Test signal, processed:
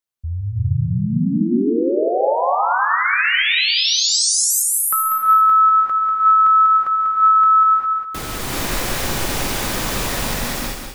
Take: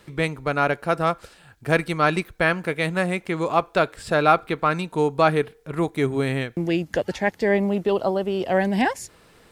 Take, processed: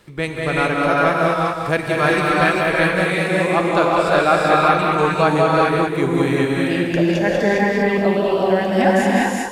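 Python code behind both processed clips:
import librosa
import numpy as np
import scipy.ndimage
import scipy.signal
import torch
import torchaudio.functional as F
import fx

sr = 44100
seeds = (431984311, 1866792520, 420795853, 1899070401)

p1 = x + fx.echo_feedback(x, sr, ms=194, feedback_pct=20, wet_db=-5.5, dry=0)
y = fx.rev_gated(p1, sr, seeds[0], gate_ms=430, shape='rising', drr_db=-4.0)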